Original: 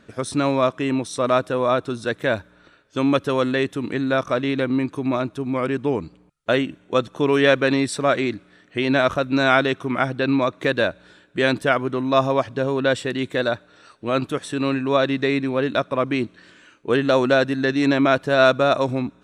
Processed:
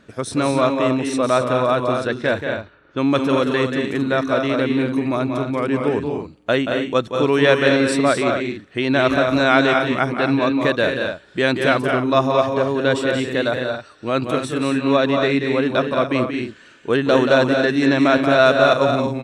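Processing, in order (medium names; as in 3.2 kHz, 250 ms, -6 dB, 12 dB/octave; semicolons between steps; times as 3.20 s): loudspeakers at several distances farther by 62 m -7 dB, 76 m -6 dB, 92 m -11 dB; 2.07–3.80 s: level-controlled noise filter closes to 1.8 kHz, open at -15 dBFS; trim +1 dB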